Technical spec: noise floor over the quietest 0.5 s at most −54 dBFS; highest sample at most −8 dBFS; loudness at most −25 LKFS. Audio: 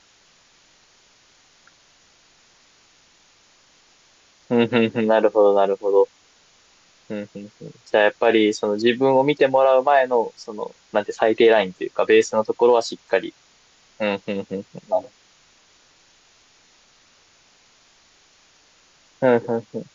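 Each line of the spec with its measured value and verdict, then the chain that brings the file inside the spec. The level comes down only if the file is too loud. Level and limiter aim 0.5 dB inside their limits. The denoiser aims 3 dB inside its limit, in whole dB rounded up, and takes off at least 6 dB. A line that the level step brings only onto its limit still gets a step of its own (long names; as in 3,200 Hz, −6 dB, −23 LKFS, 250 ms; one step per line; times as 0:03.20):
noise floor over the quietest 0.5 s −56 dBFS: in spec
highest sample −6.0 dBFS: out of spec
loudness −19.5 LKFS: out of spec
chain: level −6 dB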